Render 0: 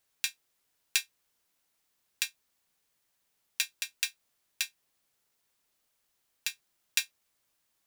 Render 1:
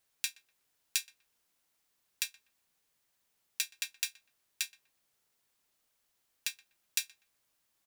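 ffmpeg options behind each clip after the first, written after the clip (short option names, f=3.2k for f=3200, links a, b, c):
-filter_complex "[0:a]acrossover=split=4500[a][b];[a]alimiter=limit=-20.5dB:level=0:latency=1:release=186[c];[c][b]amix=inputs=2:normalize=0,asplit=2[d][e];[e]adelay=123,lowpass=f=1.6k:p=1,volume=-18.5dB,asplit=2[f][g];[g]adelay=123,lowpass=f=1.6k:p=1,volume=0.33,asplit=2[h][i];[i]adelay=123,lowpass=f=1.6k:p=1,volume=0.33[j];[d][f][h][j]amix=inputs=4:normalize=0,volume=-1dB"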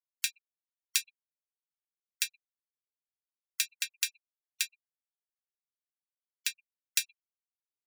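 -af "afftfilt=real='re*gte(hypot(re,im),0.00501)':imag='im*gte(hypot(re,im),0.00501)':win_size=1024:overlap=0.75,volume=3.5dB"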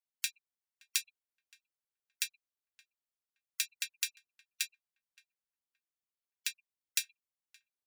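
-filter_complex "[0:a]asplit=2[a][b];[b]adelay=571,lowpass=f=1k:p=1,volume=-17dB,asplit=2[c][d];[d]adelay=571,lowpass=f=1k:p=1,volume=0.27,asplit=2[e][f];[f]adelay=571,lowpass=f=1k:p=1,volume=0.27[g];[a][c][e][g]amix=inputs=4:normalize=0,volume=-3.5dB"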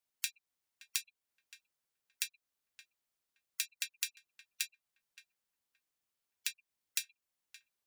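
-af "acompressor=threshold=-45dB:ratio=2,volume=6dB"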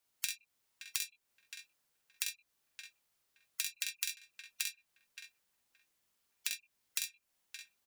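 -filter_complex "[0:a]aecho=1:1:45|65:0.631|0.376,acrossover=split=190[a][b];[b]acompressor=threshold=-45dB:ratio=2[c];[a][c]amix=inputs=2:normalize=0,volume=6.5dB"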